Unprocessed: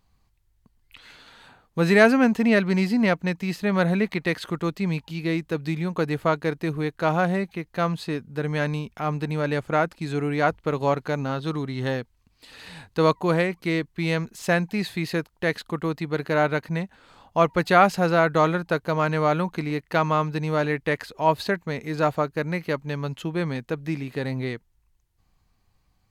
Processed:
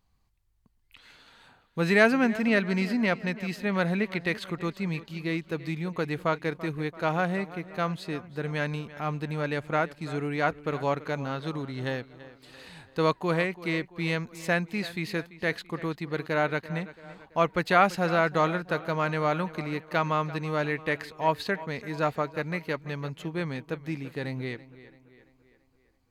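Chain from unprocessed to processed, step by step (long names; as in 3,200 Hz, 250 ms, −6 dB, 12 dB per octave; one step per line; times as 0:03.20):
dynamic equaliser 2,400 Hz, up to +4 dB, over −37 dBFS, Q 0.83
on a send: tape delay 336 ms, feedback 54%, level −16 dB, low-pass 4,900 Hz
on the sum: level −5.5 dB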